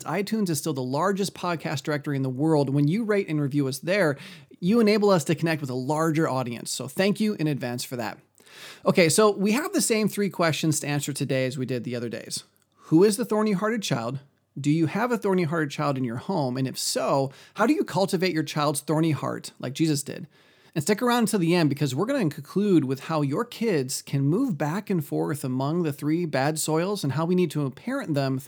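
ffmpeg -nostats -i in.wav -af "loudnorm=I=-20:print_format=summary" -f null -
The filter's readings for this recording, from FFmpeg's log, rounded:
Input Integrated:    -25.1 LUFS
Input True Peak:      -4.3 dBTP
Input LRA:             2.7 LU
Input Threshold:     -35.3 LUFS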